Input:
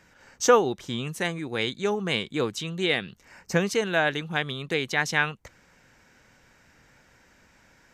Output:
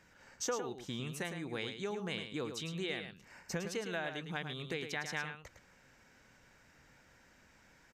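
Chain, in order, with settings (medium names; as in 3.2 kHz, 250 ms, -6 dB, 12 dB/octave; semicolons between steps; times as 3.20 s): compression 3:1, threshold -32 dBFS, peak gain reduction 14.5 dB; on a send: delay 108 ms -8 dB; on the sum: trim -6 dB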